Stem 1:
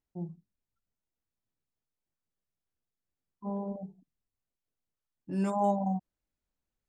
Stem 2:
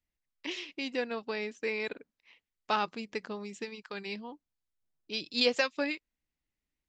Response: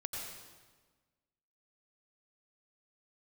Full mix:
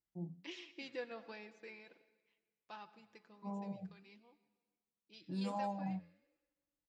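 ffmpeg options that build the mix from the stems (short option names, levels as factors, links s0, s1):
-filter_complex "[0:a]acompressor=threshold=0.0316:ratio=3,aecho=1:1:6.1:0.49,volume=0.631[s0];[1:a]aecho=1:1:5.9:0.49,adynamicequalizer=threshold=0.00562:dfrequency=2200:dqfactor=0.7:tfrequency=2200:tqfactor=0.7:attack=5:release=100:ratio=0.375:range=3:mode=cutabove:tftype=highshelf,volume=0.355,afade=t=out:st=1.11:d=0.77:silence=0.281838,asplit=2[s1][s2];[s2]volume=0.251[s3];[2:a]atrim=start_sample=2205[s4];[s3][s4]afir=irnorm=-1:irlink=0[s5];[s0][s1][s5]amix=inputs=3:normalize=0,highpass=42,flanger=delay=2.2:depth=9.5:regen=86:speed=1.4:shape=sinusoidal"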